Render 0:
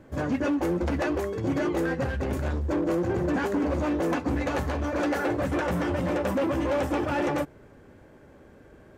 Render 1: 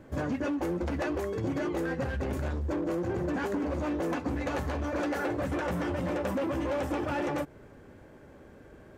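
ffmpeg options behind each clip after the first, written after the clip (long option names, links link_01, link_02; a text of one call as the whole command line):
ffmpeg -i in.wav -af "acompressor=threshold=-28dB:ratio=6" out.wav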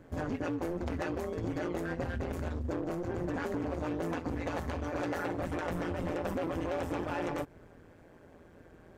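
ffmpeg -i in.wav -af "tremolo=f=170:d=0.824" out.wav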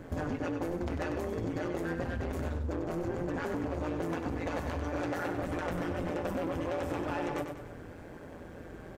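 ffmpeg -i in.wav -af "aecho=1:1:96|192|288|384:0.398|0.119|0.0358|0.0107,acompressor=threshold=-42dB:ratio=3,volume=8.5dB" out.wav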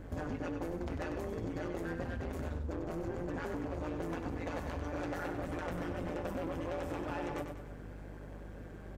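ffmpeg -i in.wav -af "aeval=exprs='val(0)+0.00708*(sin(2*PI*50*n/s)+sin(2*PI*2*50*n/s)/2+sin(2*PI*3*50*n/s)/3+sin(2*PI*4*50*n/s)/4+sin(2*PI*5*50*n/s)/5)':channel_layout=same,volume=-4.5dB" out.wav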